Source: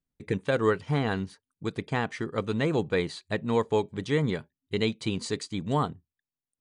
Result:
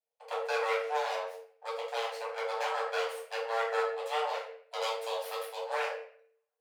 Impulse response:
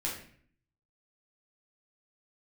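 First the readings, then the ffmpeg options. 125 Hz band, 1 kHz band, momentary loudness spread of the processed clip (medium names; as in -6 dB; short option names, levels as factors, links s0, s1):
under -40 dB, +1.0 dB, 9 LU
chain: -filter_complex "[0:a]aeval=exprs='abs(val(0))':c=same,afreqshift=450[s0];[1:a]atrim=start_sample=2205[s1];[s0][s1]afir=irnorm=-1:irlink=0,volume=0.473"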